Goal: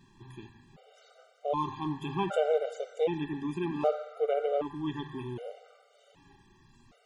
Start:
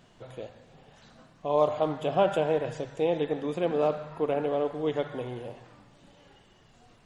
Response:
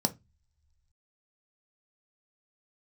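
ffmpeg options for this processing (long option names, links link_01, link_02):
-af "afftfilt=real='re*gt(sin(2*PI*0.65*pts/sr)*(1-2*mod(floor(b*sr/1024/390),2)),0)':imag='im*gt(sin(2*PI*0.65*pts/sr)*(1-2*mod(floor(b*sr/1024/390),2)),0)':win_size=1024:overlap=0.75"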